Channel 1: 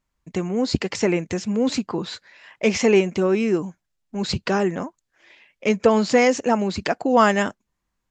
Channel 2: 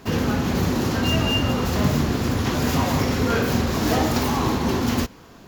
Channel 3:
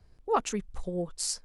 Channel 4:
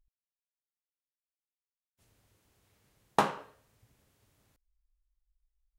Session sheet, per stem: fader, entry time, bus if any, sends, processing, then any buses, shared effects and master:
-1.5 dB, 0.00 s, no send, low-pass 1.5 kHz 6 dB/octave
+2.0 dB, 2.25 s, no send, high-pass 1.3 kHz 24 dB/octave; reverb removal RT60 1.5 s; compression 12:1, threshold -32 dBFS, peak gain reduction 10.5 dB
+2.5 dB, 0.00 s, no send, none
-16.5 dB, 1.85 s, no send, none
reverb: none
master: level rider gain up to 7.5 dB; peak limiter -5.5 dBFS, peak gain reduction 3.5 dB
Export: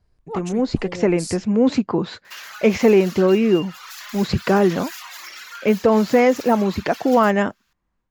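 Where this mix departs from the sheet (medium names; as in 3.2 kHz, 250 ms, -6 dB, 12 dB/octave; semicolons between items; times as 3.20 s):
stem 2 +2.0 dB -> -7.5 dB; stem 3 +2.5 dB -> -5.5 dB; stem 4: muted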